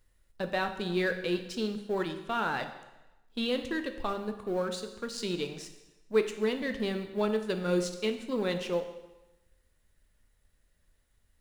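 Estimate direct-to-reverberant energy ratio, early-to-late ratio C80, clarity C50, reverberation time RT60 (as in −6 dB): 7.0 dB, 11.5 dB, 10.0 dB, 1.0 s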